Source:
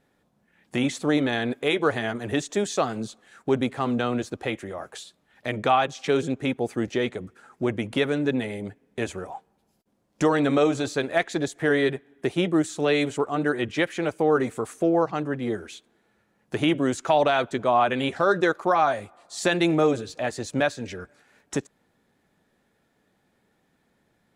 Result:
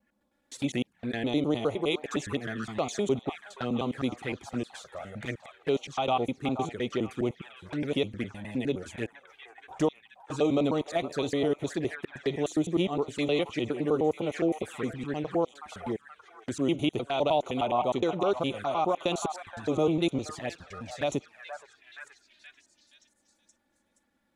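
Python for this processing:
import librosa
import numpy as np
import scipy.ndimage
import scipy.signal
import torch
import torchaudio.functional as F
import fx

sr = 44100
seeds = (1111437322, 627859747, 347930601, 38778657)

y = fx.block_reorder(x, sr, ms=103.0, group=5)
y = fx.echo_stepped(y, sr, ms=474, hz=1000.0, octaves=0.7, feedback_pct=70, wet_db=-6)
y = fx.env_flanger(y, sr, rest_ms=3.6, full_db=-21.5)
y = F.gain(torch.from_numpy(y), -3.5).numpy()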